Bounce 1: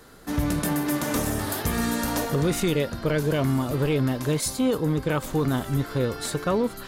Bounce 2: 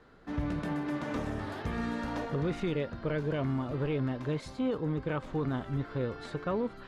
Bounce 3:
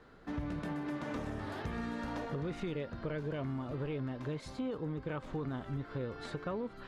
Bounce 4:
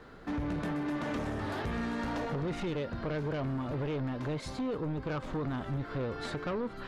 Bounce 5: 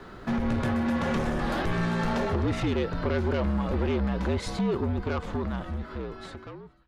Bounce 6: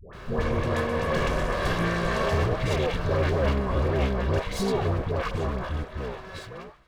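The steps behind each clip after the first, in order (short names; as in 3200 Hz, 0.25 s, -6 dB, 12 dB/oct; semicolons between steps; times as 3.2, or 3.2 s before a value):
LPF 2800 Hz 12 dB/oct; gain -8 dB
compressor 2.5:1, threshold -37 dBFS, peak gain reduction 7 dB
sine folder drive 6 dB, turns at -26.5 dBFS; gain -3 dB
ending faded out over 2.20 s; frequency shift -61 Hz; gain +7.5 dB
minimum comb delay 1.8 ms; dispersion highs, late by 0.133 s, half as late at 750 Hz; gain +4 dB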